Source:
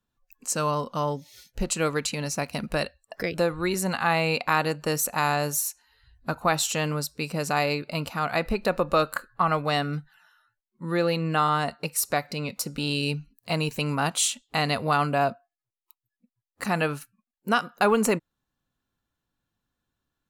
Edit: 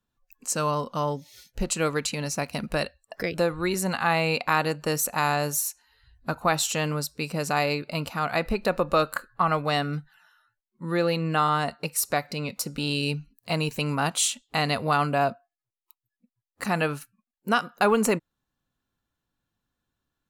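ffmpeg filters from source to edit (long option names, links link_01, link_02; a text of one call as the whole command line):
ffmpeg -i in.wav -af anull out.wav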